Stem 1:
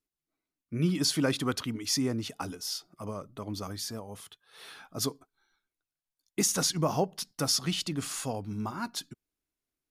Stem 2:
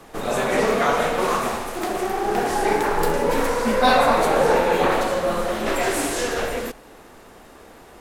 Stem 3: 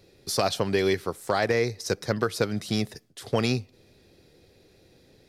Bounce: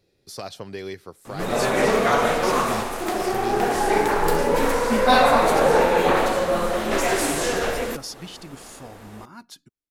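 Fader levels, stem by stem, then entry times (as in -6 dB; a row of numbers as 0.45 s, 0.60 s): -7.5 dB, +0.5 dB, -10.0 dB; 0.55 s, 1.25 s, 0.00 s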